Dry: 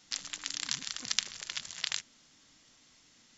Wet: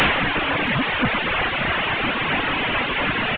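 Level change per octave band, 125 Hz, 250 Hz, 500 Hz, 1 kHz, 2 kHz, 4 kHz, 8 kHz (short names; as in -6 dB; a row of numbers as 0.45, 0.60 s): +31.5 dB, +31.5 dB, +36.5 dB, +30.5 dB, +24.0 dB, +11.0 dB, n/a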